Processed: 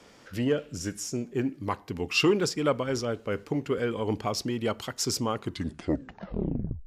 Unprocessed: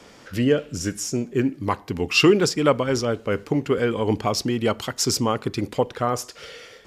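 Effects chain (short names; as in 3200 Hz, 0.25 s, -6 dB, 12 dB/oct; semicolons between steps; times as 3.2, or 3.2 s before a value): tape stop at the end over 1.53 s; core saturation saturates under 300 Hz; gain -6.5 dB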